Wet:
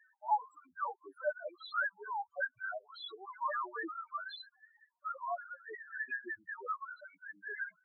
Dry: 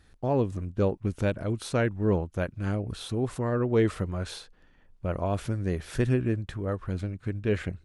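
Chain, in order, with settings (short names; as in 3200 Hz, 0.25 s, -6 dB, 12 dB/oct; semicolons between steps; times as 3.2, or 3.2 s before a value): dynamic EQ 540 Hz, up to -6 dB, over -37 dBFS, Q 0.96; LFO high-pass saw down 5.4 Hz 710–1800 Hz; loudest bins only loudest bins 2; gain +5.5 dB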